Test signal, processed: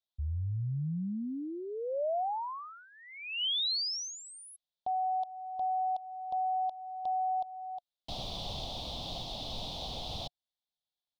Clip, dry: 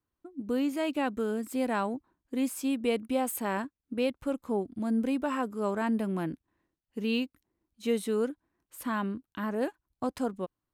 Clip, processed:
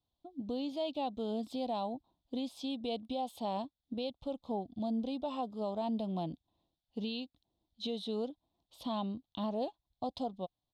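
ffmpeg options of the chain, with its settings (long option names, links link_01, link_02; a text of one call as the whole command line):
ffmpeg -i in.wav -af "firequalizer=gain_entry='entry(150,0);entry(380,-7);entry(710,7);entry(1600,-26);entry(3500,12);entry(7300,-15);entry(14000,-21)':delay=0.05:min_phase=1,alimiter=level_in=4dB:limit=-24dB:level=0:latency=1:release=398,volume=-4dB" out.wav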